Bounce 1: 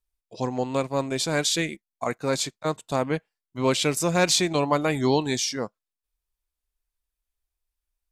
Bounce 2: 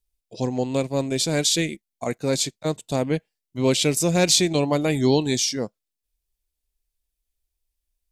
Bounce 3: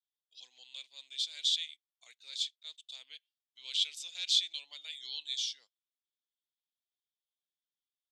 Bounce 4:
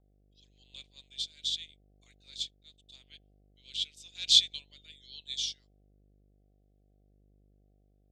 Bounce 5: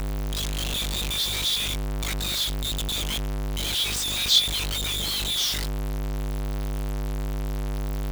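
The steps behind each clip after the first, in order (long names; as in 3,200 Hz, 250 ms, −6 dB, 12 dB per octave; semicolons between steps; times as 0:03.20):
parametric band 1,200 Hz −12 dB 1.3 octaves; level +4.5 dB
four-pole ladder band-pass 3,600 Hz, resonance 75%; level −3 dB
hum with harmonics 50 Hz, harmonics 15, −57 dBFS −6 dB per octave; rotating-speaker cabinet horn 0.85 Hz; expander for the loud parts 1.5 to 1, over −56 dBFS; level +8 dB
converter with a step at zero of −21.5 dBFS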